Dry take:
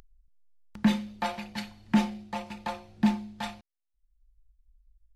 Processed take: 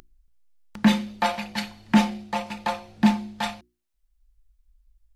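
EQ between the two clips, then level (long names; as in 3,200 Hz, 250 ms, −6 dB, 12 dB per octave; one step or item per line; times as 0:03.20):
low-shelf EQ 180 Hz −6.5 dB
mains-hum notches 60/120/180/240/300/360 Hz
+8.0 dB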